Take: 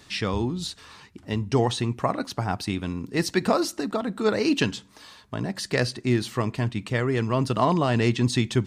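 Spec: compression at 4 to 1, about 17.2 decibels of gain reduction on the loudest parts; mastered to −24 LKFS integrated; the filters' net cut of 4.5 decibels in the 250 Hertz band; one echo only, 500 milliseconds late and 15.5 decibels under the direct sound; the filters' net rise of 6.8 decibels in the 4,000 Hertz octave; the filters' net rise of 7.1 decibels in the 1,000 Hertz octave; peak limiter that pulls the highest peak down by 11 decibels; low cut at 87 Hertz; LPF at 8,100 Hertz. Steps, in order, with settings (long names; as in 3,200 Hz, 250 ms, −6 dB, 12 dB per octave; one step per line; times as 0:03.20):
high-pass filter 87 Hz
low-pass filter 8,100 Hz
parametric band 250 Hz −6.5 dB
parametric band 1,000 Hz +8.5 dB
parametric band 4,000 Hz +8 dB
downward compressor 4 to 1, threshold −33 dBFS
brickwall limiter −26 dBFS
single-tap delay 500 ms −15.5 dB
level +14 dB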